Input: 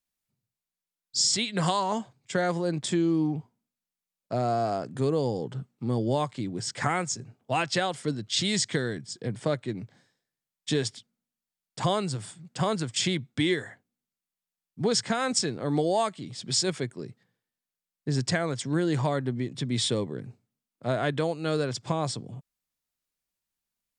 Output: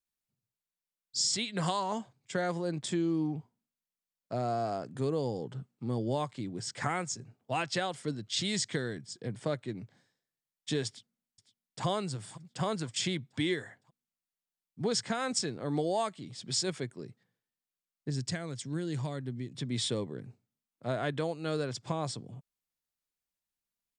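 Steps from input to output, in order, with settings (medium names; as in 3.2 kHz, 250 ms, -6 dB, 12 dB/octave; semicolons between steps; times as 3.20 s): 10.87–11.86 s: echo throw 510 ms, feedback 50%, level -16 dB; 18.10–19.55 s: peaking EQ 880 Hz -8.5 dB 2.9 oct; trim -5.5 dB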